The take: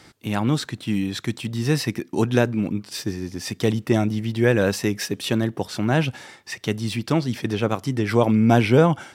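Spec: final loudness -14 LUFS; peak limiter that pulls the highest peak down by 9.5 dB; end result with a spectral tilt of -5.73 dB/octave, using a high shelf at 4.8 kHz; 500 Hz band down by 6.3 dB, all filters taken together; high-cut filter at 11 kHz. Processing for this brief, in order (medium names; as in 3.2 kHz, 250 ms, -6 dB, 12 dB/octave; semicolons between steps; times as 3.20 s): low-pass 11 kHz; peaking EQ 500 Hz -8 dB; treble shelf 4.8 kHz -4.5 dB; trim +13 dB; peak limiter -1.5 dBFS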